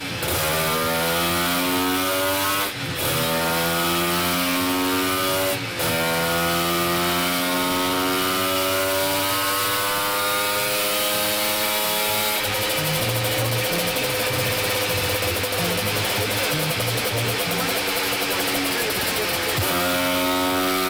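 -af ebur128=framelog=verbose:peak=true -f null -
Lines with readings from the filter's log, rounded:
Integrated loudness:
  I:         -20.7 LUFS
  Threshold: -30.7 LUFS
Loudness range:
  LRA:         1.1 LU
  Threshold: -40.8 LUFS
  LRA low:   -21.3 LUFS
  LRA high:  -20.2 LUFS
True peak:
  Peak:      -14.7 dBFS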